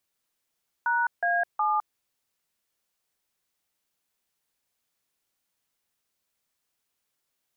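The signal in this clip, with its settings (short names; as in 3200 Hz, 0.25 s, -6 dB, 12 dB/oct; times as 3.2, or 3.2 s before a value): DTMF "#A7", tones 0.209 s, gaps 0.157 s, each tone -24.5 dBFS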